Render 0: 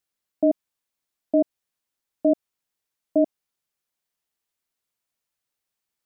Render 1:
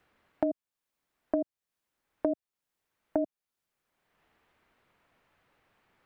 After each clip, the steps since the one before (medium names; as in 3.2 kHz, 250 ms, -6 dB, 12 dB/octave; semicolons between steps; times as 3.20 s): three bands compressed up and down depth 100%; trim -7.5 dB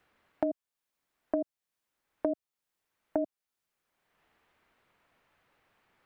bass shelf 440 Hz -3 dB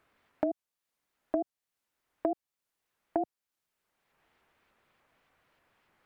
vibrato with a chosen wave saw up 3.4 Hz, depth 250 cents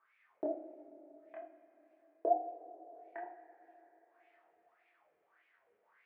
wah-wah 1.7 Hz 420–2400 Hz, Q 7.5; chorus voices 2, 0.41 Hz, delay 26 ms, depth 1.9 ms; two-slope reverb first 0.34 s, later 4.1 s, from -18 dB, DRR -0.5 dB; trim +9.5 dB